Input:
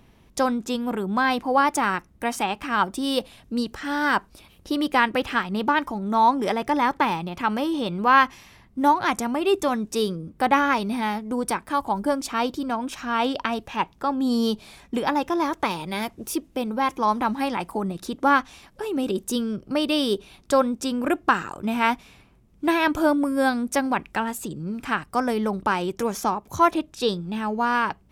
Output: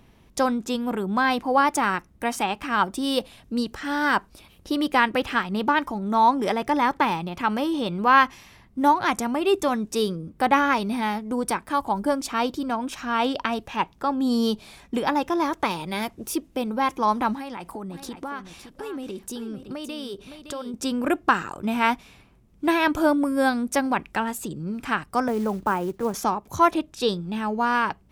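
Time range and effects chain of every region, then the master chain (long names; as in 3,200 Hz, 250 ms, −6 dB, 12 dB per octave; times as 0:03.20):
0:17.35–0:20.74: downward compressor 5 to 1, threshold −31 dBFS + single-tap delay 564 ms −10 dB
0:25.28–0:26.14: low-pass filter 1,400 Hz + log-companded quantiser 6 bits + multiband upward and downward expander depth 40%
whole clip: no processing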